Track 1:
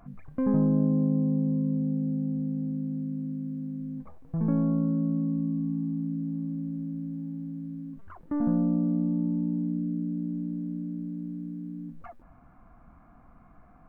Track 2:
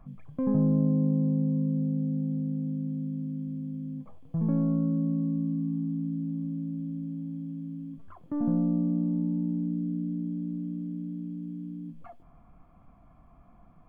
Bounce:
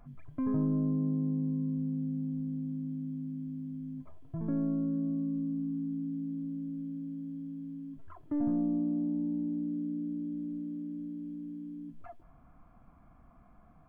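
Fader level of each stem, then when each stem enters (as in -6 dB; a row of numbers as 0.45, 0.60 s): -8.0, -5.0 dB; 0.00, 0.00 s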